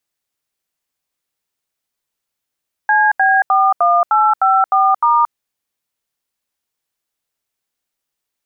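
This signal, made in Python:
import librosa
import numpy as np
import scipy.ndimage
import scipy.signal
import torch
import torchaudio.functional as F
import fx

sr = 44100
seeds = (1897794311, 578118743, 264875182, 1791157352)

y = fx.dtmf(sr, digits='CB41854*', tone_ms=226, gap_ms=79, level_db=-12.0)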